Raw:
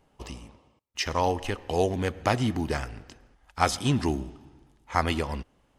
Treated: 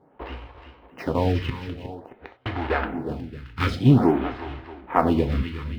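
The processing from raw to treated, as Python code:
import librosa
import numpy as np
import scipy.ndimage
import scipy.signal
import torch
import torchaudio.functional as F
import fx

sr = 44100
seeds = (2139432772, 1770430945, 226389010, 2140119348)

p1 = fx.block_float(x, sr, bits=3)
p2 = scipy.signal.sosfilt(scipy.signal.butter(2, 62.0, 'highpass', fs=sr, output='sos'), p1)
p3 = 10.0 ** (-21.5 / 20.0) * np.tanh(p2 / 10.0 ** (-21.5 / 20.0))
p4 = p2 + F.gain(torch.from_numpy(p3), -3.0).numpy()
p5 = fx.gate_flip(p4, sr, shuts_db=-16.0, range_db=-41, at=(1.45, 2.46))
p6 = fx.air_absorb(p5, sr, metres=430.0)
p7 = fx.echo_multitap(p6, sr, ms=(335, 362, 402, 626), db=(-20.0, -11.0, -19.5, -17.0))
p8 = fx.rev_gated(p7, sr, seeds[0], gate_ms=120, shape='falling', drr_db=6.5)
p9 = fx.stagger_phaser(p8, sr, hz=0.5)
y = F.gain(torch.from_numpy(p9), 6.0).numpy()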